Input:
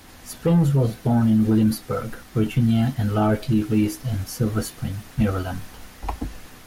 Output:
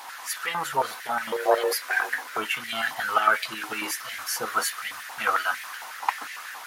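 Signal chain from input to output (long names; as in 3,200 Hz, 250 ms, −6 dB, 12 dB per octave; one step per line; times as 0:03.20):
0:01.32–0:02.37: frequency shifter +250 Hz
high-pass on a step sequencer 11 Hz 890–2,000 Hz
level +4.5 dB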